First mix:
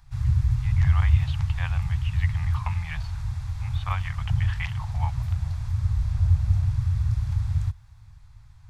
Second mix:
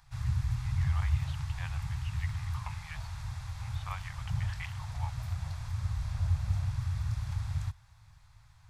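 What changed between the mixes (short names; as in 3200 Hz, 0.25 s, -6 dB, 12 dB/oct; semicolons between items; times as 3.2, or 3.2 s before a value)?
speech -9.0 dB; master: add low shelf 170 Hz -11.5 dB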